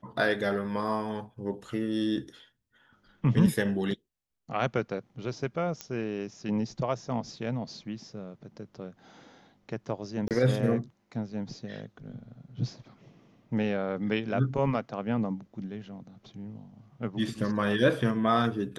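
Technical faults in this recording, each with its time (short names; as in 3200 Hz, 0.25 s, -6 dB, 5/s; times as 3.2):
5.81 pop -19 dBFS
10.28–10.31 gap 28 ms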